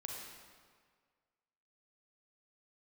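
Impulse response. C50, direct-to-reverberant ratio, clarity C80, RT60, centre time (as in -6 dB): 0.5 dB, -1.0 dB, 2.0 dB, 1.8 s, 85 ms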